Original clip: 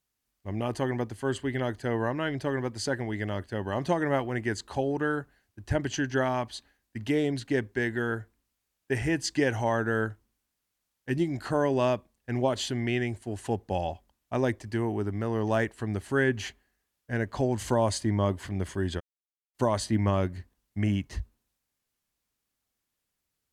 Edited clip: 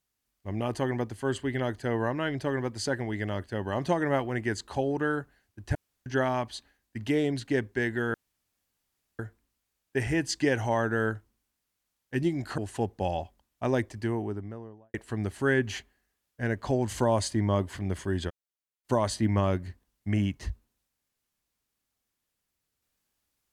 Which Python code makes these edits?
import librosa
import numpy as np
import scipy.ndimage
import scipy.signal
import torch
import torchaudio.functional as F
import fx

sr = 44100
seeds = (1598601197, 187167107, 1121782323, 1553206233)

y = fx.studio_fade_out(x, sr, start_s=14.61, length_s=1.03)
y = fx.edit(y, sr, fx.room_tone_fill(start_s=5.75, length_s=0.31),
    fx.insert_room_tone(at_s=8.14, length_s=1.05),
    fx.cut(start_s=11.53, length_s=1.75), tone=tone)